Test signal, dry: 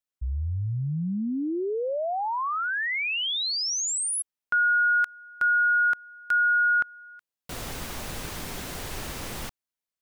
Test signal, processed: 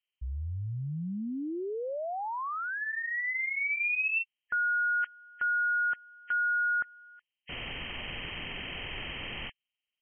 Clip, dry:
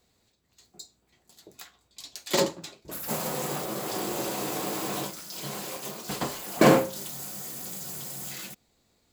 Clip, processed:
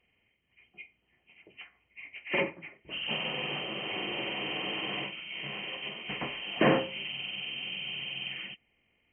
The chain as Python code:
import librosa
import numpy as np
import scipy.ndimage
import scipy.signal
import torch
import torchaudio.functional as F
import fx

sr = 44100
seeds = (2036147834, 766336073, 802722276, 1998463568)

y = fx.freq_compress(x, sr, knee_hz=1700.0, ratio=4.0)
y = y * 10.0 ** (-6.5 / 20.0)